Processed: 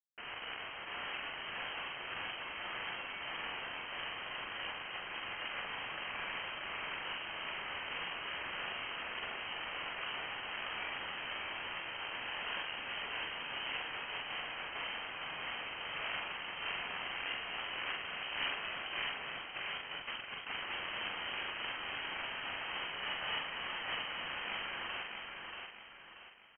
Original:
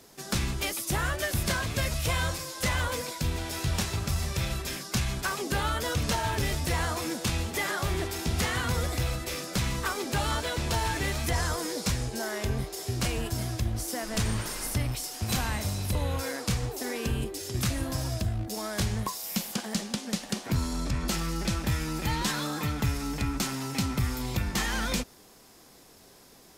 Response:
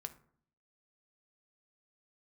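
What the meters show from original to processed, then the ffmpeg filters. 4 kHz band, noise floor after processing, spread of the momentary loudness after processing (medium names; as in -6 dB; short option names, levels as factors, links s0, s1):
-4.5 dB, -47 dBFS, 4 LU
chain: -filter_complex "[0:a]highpass=f=170:w=0.5412,highpass=f=170:w=1.3066,acompressor=threshold=0.01:ratio=8,aeval=exprs='(mod(89.1*val(0)+1,2)-1)/89.1':c=same,acrusher=bits=6:mix=0:aa=0.000001,afreqshift=470,asplit=2[s0][s1];[s1]adelay=44,volume=0.631[s2];[s0][s2]amix=inputs=2:normalize=0,aecho=1:1:633|1266|1899|2532|3165:0.596|0.232|0.0906|0.0353|0.0138,lowpass=f=3100:t=q:w=0.5098,lowpass=f=3100:t=q:w=0.6013,lowpass=f=3100:t=q:w=0.9,lowpass=f=3100:t=q:w=2.563,afreqshift=-3700,volume=1.78"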